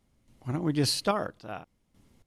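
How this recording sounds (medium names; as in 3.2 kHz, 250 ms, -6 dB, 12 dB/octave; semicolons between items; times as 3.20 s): random-step tremolo 3.6 Hz, depth 80%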